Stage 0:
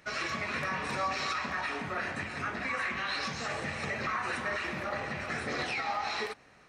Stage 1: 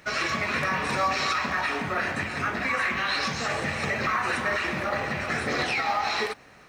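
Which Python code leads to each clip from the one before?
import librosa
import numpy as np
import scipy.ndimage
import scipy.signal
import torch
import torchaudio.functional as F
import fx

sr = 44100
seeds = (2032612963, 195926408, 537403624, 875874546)

y = fx.quant_companded(x, sr, bits=8)
y = y * librosa.db_to_amplitude(7.0)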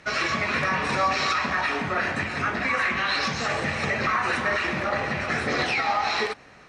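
y = scipy.signal.sosfilt(scipy.signal.butter(2, 7400.0, 'lowpass', fs=sr, output='sos'), x)
y = y * librosa.db_to_amplitude(2.0)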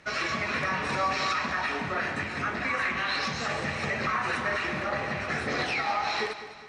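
y = fx.echo_feedback(x, sr, ms=205, feedback_pct=47, wet_db=-13.0)
y = y * librosa.db_to_amplitude(-4.5)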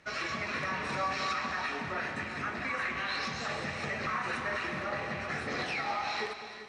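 y = fx.rev_gated(x, sr, seeds[0], gate_ms=430, shape='rising', drr_db=10.5)
y = y * librosa.db_to_amplitude(-5.5)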